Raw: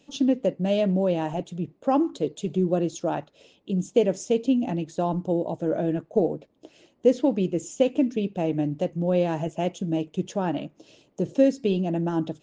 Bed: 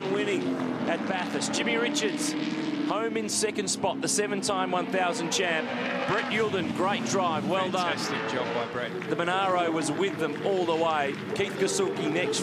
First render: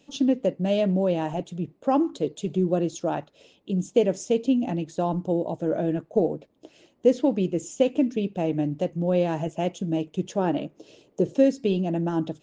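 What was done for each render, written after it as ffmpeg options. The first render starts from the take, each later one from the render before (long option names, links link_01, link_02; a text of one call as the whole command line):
ffmpeg -i in.wav -filter_complex "[0:a]asettb=1/sr,asplit=3[link_01][link_02][link_03];[link_01]atrim=end=10.384[link_04];[link_02]atrim=start=10.38:end=11.29,asetpts=PTS-STARTPTS,afade=type=in:duration=0.004:curve=qsin,afade=type=out:start_time=0.906:duration=0.004:curve=qsin,equalizer=frequency=430:width_type=o:width=0.77:gain=7[link_05];[link_03]atrim=start=11.286[link_06];[link_04][link_05]acrossfade=duration=0.004:curve1=hsin:curve2=qsin[link_07];[link_07][link_06]acrossfade=duration=0.004:curve1=qsin:curve2=hsin" out.wav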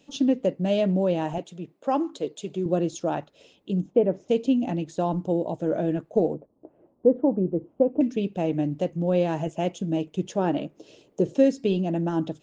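ffmpeg -i in.wav -filter_complex "[0:a]asettb=1/sr,asplit=3[link_01][link_02][link_03];[link_01]atrim=end=1.384[link_04];[link_02]atrim=start=1.38:end=2.66,asetpts=PTS-STARTPTS,afade=type=in:duration=0.004:curve=qsin,afade=type=out:start_time=1.276:duration=0.004:curve=qsin,highpass=frequency=390:poles=1[link_05];[link_03]atrim=start=2.656[link_06];[link_04][link_05]acrossfade=duration=0.004:curve1=hsin:curve2=qsin[link_07];[link_07][link_06]acrossfade=duration=0.004:curve1=qsin:curve2=hsin,asplit=3[link_08][link_09][link_10];[link_08]afade=type=out:start_time=3.8:duration=0.02[link_11];[link_09]lowpass=1300,afade=type=in:start_time=3.8:duration=0.02,afade=type=out:start_time=4.28:duration=0.02[link_12];[link_10]afade=type=in:start_time=4.28:duration=0.02[link_13];[link_11][link_12][link_13]amix=inputs=3:normalize=0,asettb=1/sr,asplit=3[link_14][link_15][link_16];[link_14]atrim=end=6.344[link_17];[link_15]atrim=start=6.34:end=8.01,asetpts=PTS-STARTPTS,afade=type=in:duration=0.004:curve=qsin,afade=type=out:start_time=1.666:duration=0.004:curve=qsin,lowpass=frequency=1100:width=0.5412,lowpass=frequency=1100:width=1.3066[link_18];[link_16]atrim=start=8.006[link_19];[link_17][link_18]acrossfade=duration=0.004:curve1=hsin:curve2=qsin[link_20];[link_20][link_19]acrossfade=duration=0.004:curve1=qsin:curve2=hsin" out.wav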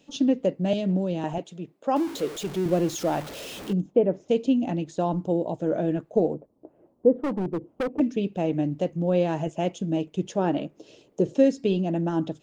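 ffmpeg -i in.wav -filter_complex "[0:a]asettb=1/sr,asplit=3[link_01][link_02][link_03];[link_01]atrim=end=0.734[link_04];[link_02]atrim=start=0.73:end=1.24,asetpts=PTS-STARTPTS,afade=type=in:duration=0.004:curve=qsin,afade=type=out:start_time=0.506:duration=0.004:curve=qsin,acrossover=split=340|3000[link_05][link_06][link_07];[link_06]acompressor=threshold=-32dB:ratio=6:attack=3.2:release=140:knee=2.83:detection=peak[link_08];[link_05][link_08][link_07]amix=inputs=3:normalize=0[link_09];[link_03]atrim=start=1.236[link_10];[link_04][link_09]acrossfade=duration=0.004:curve1=hsin:curve2=qsin[link_11];[link_11][link_10]acrossfade=duration=0.004:curve1=qsin:curve2=hsin,asettb=1/sr,asplit=3[link_12][link_13][link_14];[link_12]atrim=end=1.964[link_15];[link_13]atrim=start=1.96:end=3.73,asetpts=PTS-STARTPTS,afade=type=in:duration=0.004:curve=qsin,afade=type=out:start_time=1.766:duration=0.004:curve=qsin,aeval=exprs='val(0)+0.5*0.0224*sgn(val(0))':channel_layout=same[link_16];[link_14]atrim=start=3.726[link_17];[link_15][link_16]acrossfade=duration=0.004:curve1=hsin:curve2=qsin[link_18];[link_18][link_17]acrossfade=duration=0.004:curve1=qsin:curve2=hsin,asettb=1/sr,asplit=3[link_19][link_20][link_21];[link_19]atrim=end=7.154[link_22];[link_20]atrim=start=7.15:end=8,asetpts=PTS-STARTPTS,afade=type=in:duration=0.004:curve=qsin,afade=type=out:start_time=0.846:duration=0.004:curve=qsin,volume=23.5dB,asoftclip=hard,volume=-23.5dB[link_23];[link_21]atrim=start=7.996[link_24];[link_22][link_23]acrossfade=duration=0.004:curve1=hsin:curve2=qsin[link_25];[link_25][link_24]acrossfade=duration=0.004:curve1=qsin:curve2=hsin" out.wav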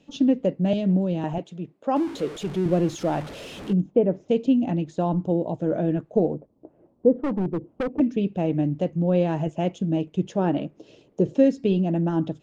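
ffmpeg -i in.wav -af "lowpass=11000,bass=frequency=250:gain=5,treble=frequency=4000:gain=-6" out.wav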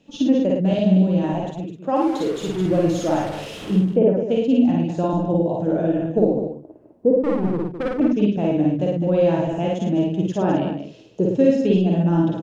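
ffmpeg -i in.wav -filter_complex "[0:a]asplit=2[link_01][link_02];[link_02]adelay=49,volume=-2.5dB[link_03];[link_01][link_03]amix=inputs=2:normalize=0,aecho=1:1:58.31|207:0.794|0.398" out.wav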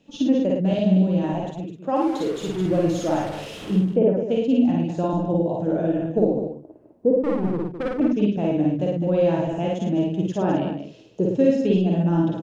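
ffmpeg -i in.wav -af "volume=-2dB" out.wav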